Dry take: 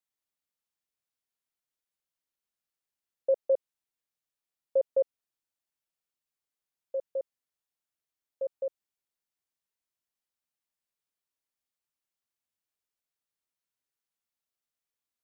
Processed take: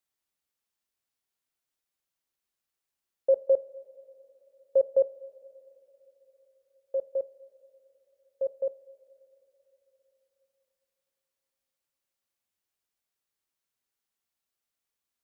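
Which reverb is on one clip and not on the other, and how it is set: two-slope reverb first 0.27 s, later 3.8 s, from -18 dB, DRR 12 dB; gain +3 dB

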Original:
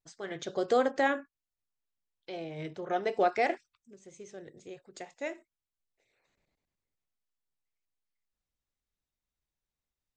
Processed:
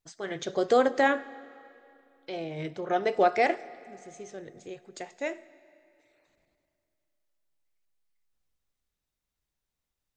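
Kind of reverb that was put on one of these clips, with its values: digital reverb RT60 2.7 s, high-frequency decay 0.85×, pre-delay 35 ms, DRR 18.5 dB; gain +4 dB

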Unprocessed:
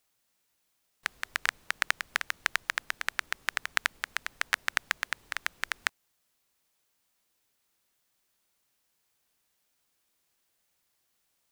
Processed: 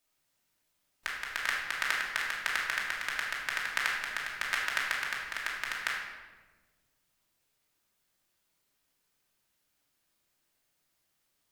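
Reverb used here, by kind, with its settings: shoebox room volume 920 m³, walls mixed, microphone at 2.7 m; gain -6 dB

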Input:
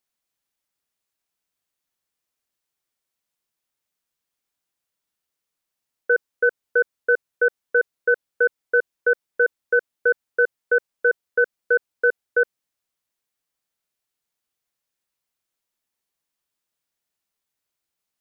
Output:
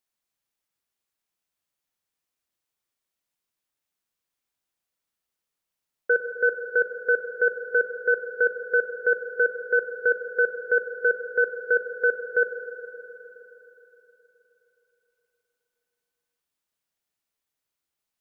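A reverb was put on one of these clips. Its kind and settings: spring tank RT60 3.8 s, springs 38/52 ms, chirp 60 ms, DRR 6 dB; gain -2.5 dB

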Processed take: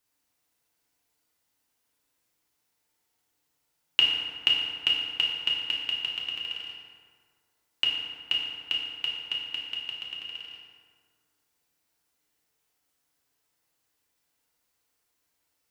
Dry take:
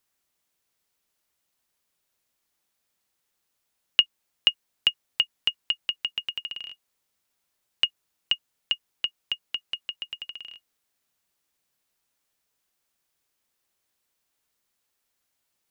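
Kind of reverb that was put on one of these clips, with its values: FDN reverb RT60 1.9 s, low-frequency decay 1×, high-frequency decay 0.55×, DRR -4 dB; gain -3.5 dB

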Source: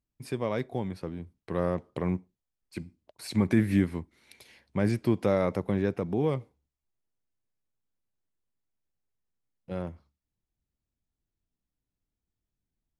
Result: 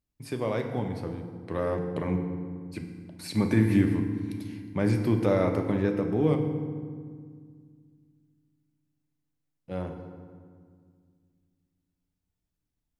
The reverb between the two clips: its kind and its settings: FDN reverb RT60 1.9 s, low-frequency decay 1.55×, high-frequency decay 0.6×, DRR 4 dB

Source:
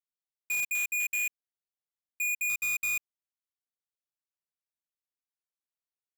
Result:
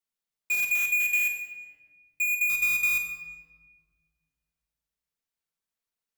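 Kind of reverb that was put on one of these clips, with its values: shoebox room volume 1600 m³, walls mixed, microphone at 1.6 m; gain +2.5 dB

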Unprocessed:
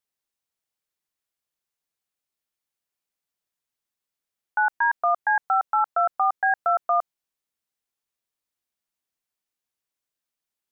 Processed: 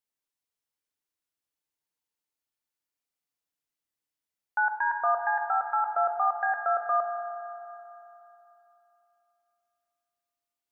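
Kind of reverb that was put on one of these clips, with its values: FDN reverb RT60 3.2 s, high-frequency decay 0.9×, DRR 3.5 dB; gain -5 dB

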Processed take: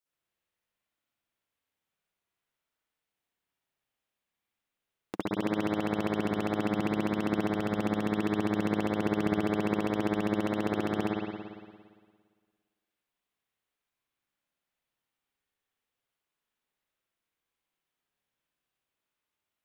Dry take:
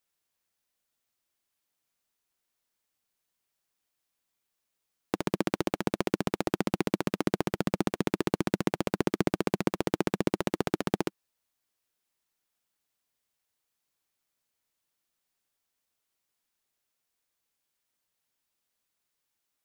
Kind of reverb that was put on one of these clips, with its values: spring tank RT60 1.7 s, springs 57 ms, chirp 75 ms, DRR -9 dB; gain -9.5 dB

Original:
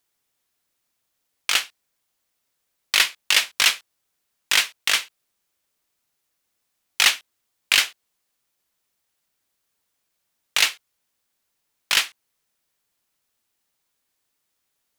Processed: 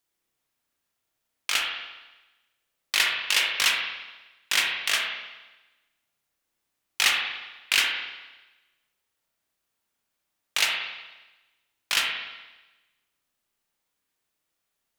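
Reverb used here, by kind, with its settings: spring tank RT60 1.1 s, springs 31/59 ms, chirp 65 ms, DRR -0.5 dB; gain -5.5 dB

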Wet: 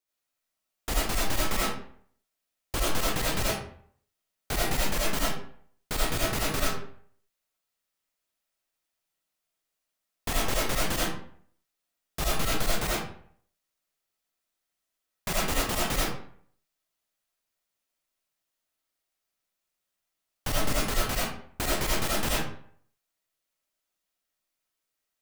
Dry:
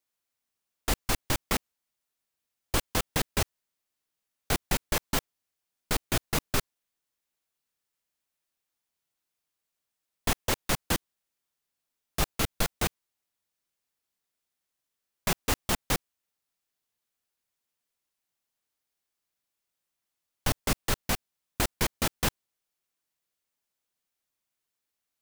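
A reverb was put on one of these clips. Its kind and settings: digital reverb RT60 0.58 s, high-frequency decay 0.7×, pre-delay 40 ms, DRR -6 dB; gain -4.5 dB

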